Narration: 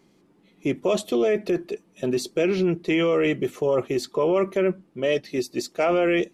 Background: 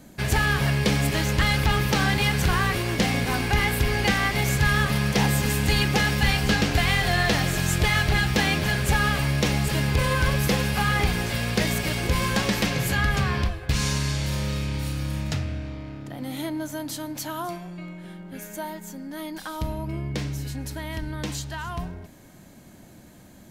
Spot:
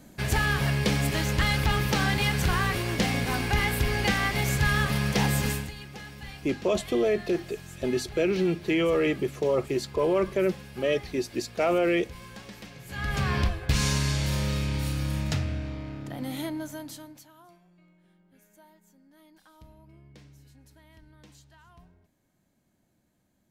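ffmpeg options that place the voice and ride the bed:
-filter_complex "[0:a]adelay=5800,volume=-3dB[a];[1:a]volume=17dB,afade=t=out:st=5.47:d=0.24:silence=0.133352,afade=t=in:st=12.87:d=0.52:silence=0.1,afade=t=out:st=16.21:d=1.06:silence=0.0749894[b];[a][b]amix=inputs=2:normalize=0"

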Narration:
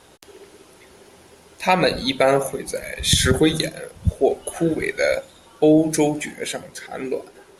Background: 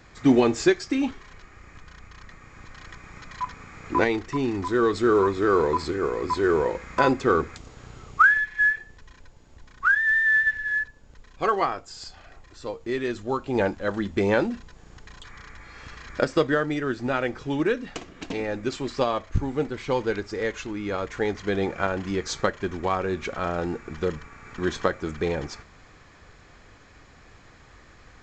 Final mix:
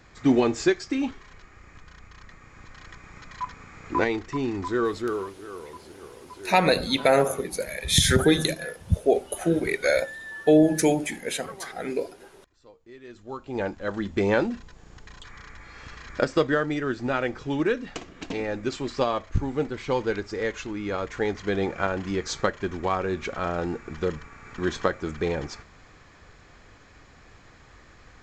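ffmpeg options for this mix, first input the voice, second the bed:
-filter_complex "[0:a]adelay=4850,volume=-2.5dB[a];[1:a]volume=16.5dB,afade=t=out:st=4.72:d=0.63:silence=0.141254,afade=t=in:st=13.01:d=1.2:silence=0.11885[b];[a][b]amix=inputs=2:normalize=0"

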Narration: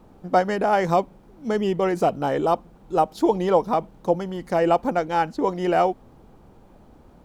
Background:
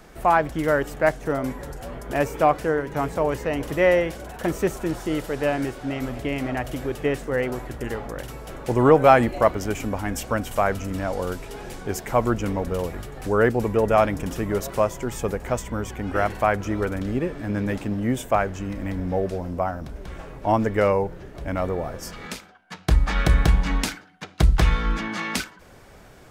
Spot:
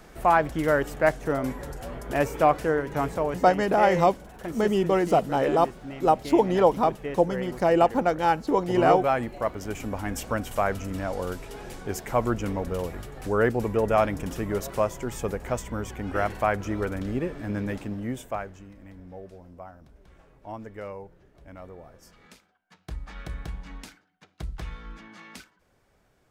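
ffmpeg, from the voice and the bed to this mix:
-filter_complex "[0:a]adelay=3100,volume=-0.5dB[a];[1:a]volume=5dB,afade=t=out:st=3.04:d=0.49:silence=0.375837,afade=t=in:st=9.39:d=0.69:silence=0.473151,afade=t=out:st=17.47:d=1.25:silence=0.188365[b];[a][b]amix=inputs=2:normalize=0"

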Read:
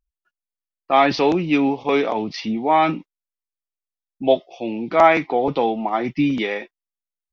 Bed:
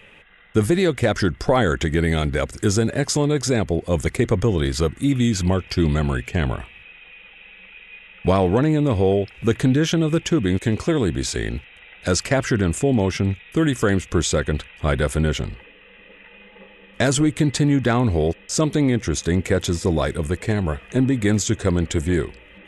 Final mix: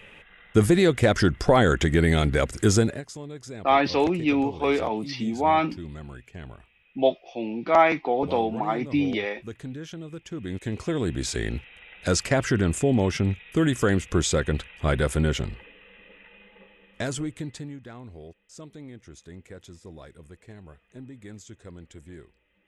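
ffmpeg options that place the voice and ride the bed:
-filter_complex "[0:a]adelay=2750,volume=-4.5dB[a];[1:a]volume=15.5dB,afade=t=out:st=2.8:d=0.22:silence=0.11885,afade=t=in:st=10.25:d=1.24:silence=0.158489,afade=t=out:st=15.67:d=2.13:silence=0.0891251[b];[a][b]amix=inputs=2:normalize=0"

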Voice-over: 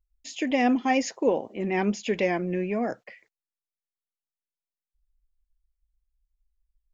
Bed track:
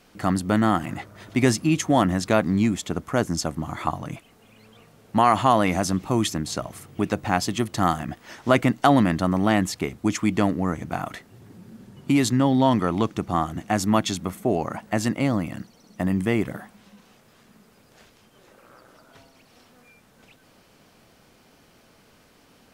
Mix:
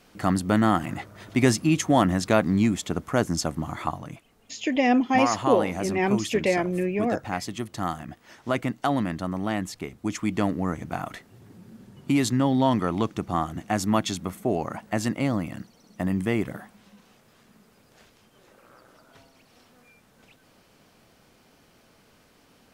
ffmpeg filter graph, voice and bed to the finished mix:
-filter_complex "[0:a]adelay=4250,volume=2dB[a];[1:a]volume=4.5dB,afade=t=out:st=3.63:d=0.57:silence=0.446684,afade=t=in:st=9.89:d=0.68:silence=0.562341[b];[a][b]amix=inputs=2:normalize=0"

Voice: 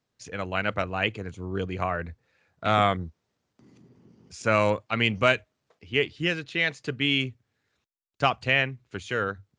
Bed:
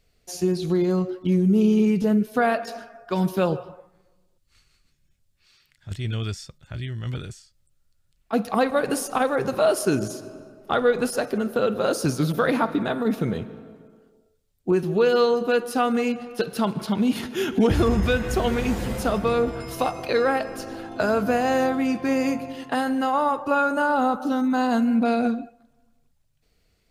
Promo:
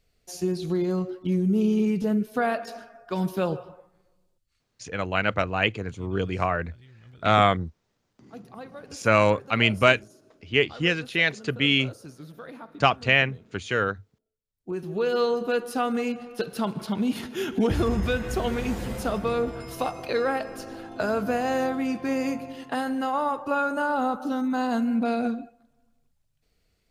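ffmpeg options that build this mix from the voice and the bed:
-filter_complex "[0:a]adelay=4600,volume=3dB[a];[1:a]volume=12.5dB,afade=t=out:st=4.28:d=0.34:silence=0.149624,afade=t=in:st=14.45:d=0.81:silence=0.149624[b];[a][b]amix=inputs=2:normalize=0"

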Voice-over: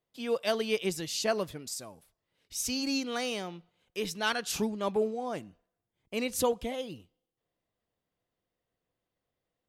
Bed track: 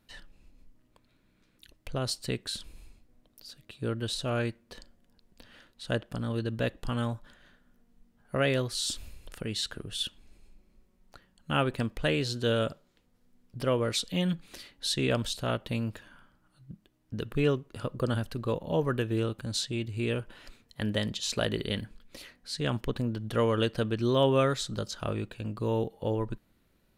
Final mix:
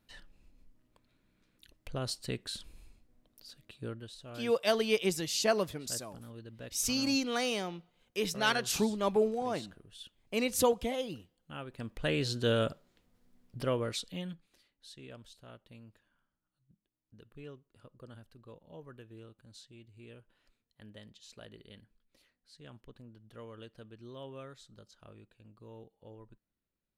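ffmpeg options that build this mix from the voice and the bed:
-filter_complex "[0:a]adelay=4200,volume=1dB[a];[1:a]volume=10.5dB,afade=t=out:st=3.68:d=0.42:silence=0.251189,afade=t=in:st=11.71:d=0.55:silence=0.177828,afade=t=out:st=13.37:d=1.13:silence=0.0944061[b];[a][b]amix=inputs=2:normalize=0"

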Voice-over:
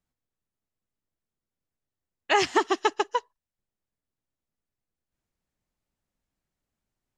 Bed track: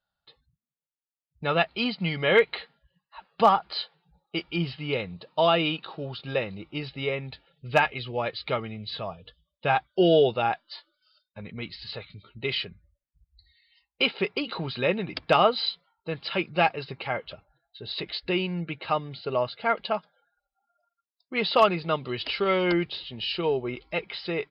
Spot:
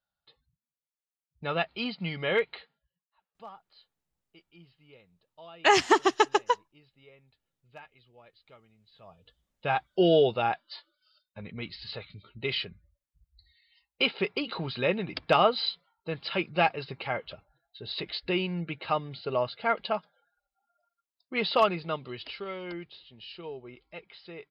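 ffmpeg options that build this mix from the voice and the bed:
-filter_complex "[0:a]adelay=3350,volume=1.5dB[a];[1:a]volume=19.5dB,afade=t=out:st=2.25:d=0.82:silence=0.0841395,afade=t=in:st=8.94:d=1.02:silence=0.0562341,afade=t=out:st=21.36:d=1.18:silence=0.237137[b];[a][b]amix=inputs=2:normalize=0"

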